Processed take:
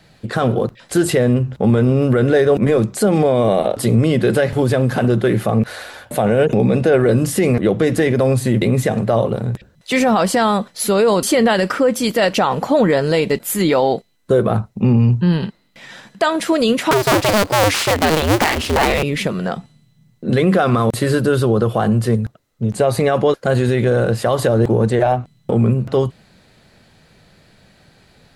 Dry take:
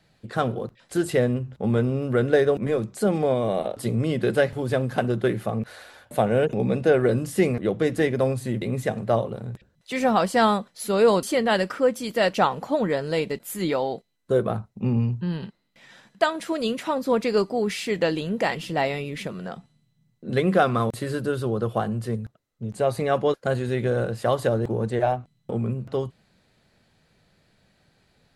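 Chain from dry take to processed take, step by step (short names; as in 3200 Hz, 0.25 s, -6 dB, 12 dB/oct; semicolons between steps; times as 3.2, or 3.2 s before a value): 16.91–19.03 cycle switcher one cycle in 2, inverted; maximiser +17.5 dB; gain -5 dB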